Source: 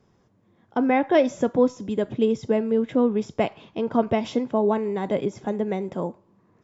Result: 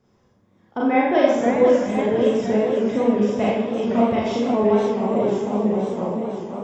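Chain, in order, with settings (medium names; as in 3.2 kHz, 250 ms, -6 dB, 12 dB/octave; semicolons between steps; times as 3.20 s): 4.86–5.93 s: elliptic band-stop 1.2–6.3 kHz; on a send: repeats whose band climbs or falls 316 ms, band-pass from 1 kHz, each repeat 0.7 oct, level -9.5 dB; on the sum: Schroeder reverb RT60 0.75 s, combs from 30 ms, DRR -5 dB; modulated delay 510 ms, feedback 66%, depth 173 cents, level -7.5 dB; trim -3.5 dB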